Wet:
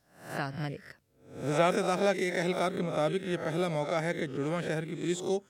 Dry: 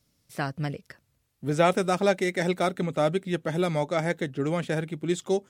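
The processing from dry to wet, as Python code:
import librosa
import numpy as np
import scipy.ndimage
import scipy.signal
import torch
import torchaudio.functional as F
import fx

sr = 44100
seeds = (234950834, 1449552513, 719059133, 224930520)

y = fx.spec_swells(x, sr, rise_s=0.51)
y = F.gain(torch.from_numpy(y), -5.5).numpy()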